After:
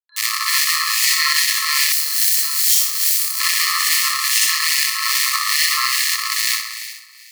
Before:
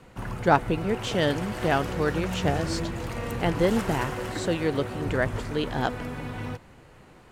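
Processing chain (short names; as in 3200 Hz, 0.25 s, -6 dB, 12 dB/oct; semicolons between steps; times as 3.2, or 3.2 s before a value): rattling part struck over -33 dBFS, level -12 dBFS; bit-crush 6-bit; thinning echo 63 ms, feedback 74%, high-pass 930 Hz, level -4 dB; spring tank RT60 1.2 s, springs 55 ms, chirp 35 ms, DRR 7 dB; harmonic tremolo 2.4 Hz, depth 70%, crossover 2400 Hz; FFT band-reject 140–2900 Hz; upward compressor, threshold -55 dBFS; tone controls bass -11 dB, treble +5 dB; ring modulator 1200 Hz; 1.92–3.4 differentiator; maximiser +21.5 dB; gain -1 dB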